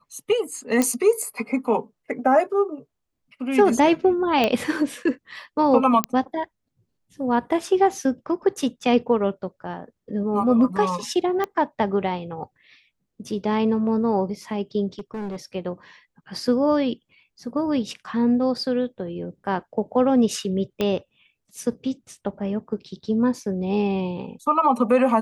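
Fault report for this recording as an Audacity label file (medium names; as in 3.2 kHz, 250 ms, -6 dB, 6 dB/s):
0.820000	0.820000	pop -7 dBFS
4.440000	4.440000	pop -8 dBFS
6.040000	6.040000	pop -5 dBFS
11.440000	11.440000	pop -13 dBFS
14.990000	15.370000	clipped -27 dBFS
20.810000	20.810000	pop -11 dBFS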